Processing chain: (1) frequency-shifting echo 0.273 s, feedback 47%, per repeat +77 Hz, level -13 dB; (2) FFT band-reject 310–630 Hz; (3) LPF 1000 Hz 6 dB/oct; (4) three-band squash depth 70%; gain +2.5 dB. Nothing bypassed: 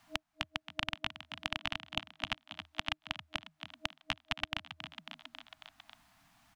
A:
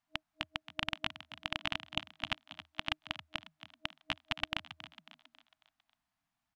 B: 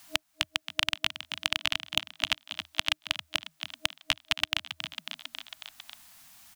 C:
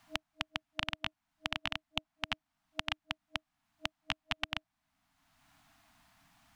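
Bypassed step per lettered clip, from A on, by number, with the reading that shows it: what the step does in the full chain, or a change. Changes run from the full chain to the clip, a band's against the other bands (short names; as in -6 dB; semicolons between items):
4, 8 kHz band -3.5 dB; 3, 8 kHz band +12.0 dB; 1, momentary loudness spread change -9 LU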